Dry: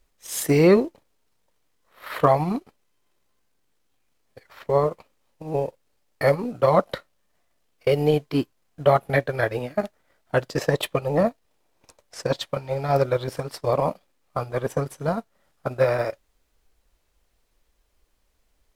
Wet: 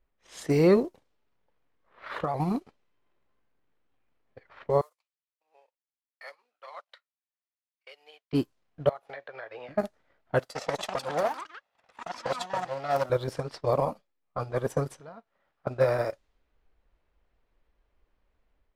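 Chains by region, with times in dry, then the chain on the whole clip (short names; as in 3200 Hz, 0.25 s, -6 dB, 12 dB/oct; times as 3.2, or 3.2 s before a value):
0.83–2.4 compressor 5:1, threshold -23 dBFS + shaped vibrato square 4.3 Hz, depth 100 cents
4.81–8.33 HPF 710 Hz + differentiator + upward expander, over -60 dBFS
8.89–9.69 three-band isolator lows -23 dB, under 500 Hz, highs -14 dB, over 7100 Hz + compressor 4:1, threshold -34 dBFS
10.39–13.1 minimum comb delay 1.5 ms + HPF 590 Hz 6 dB/oct + echoes that change speed 0.275 s, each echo +5 st, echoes 3, each echo -6 dB
13.85–14.4 gate -54 dBFS, range -9 dB + ensemble effect
15–15.67 compressor 2.5:1, threshold -42 dBFS + low shelf 390 Hz -10 dB
whole clip: AGC gain up to 5 dB; dynamic EQ 2500 Hz, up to -4 dB, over -39 dBFS, Q 1.5; low-pass opened by the level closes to 2300 Hz, open at -16.5 dBFS; gain -7.5 dB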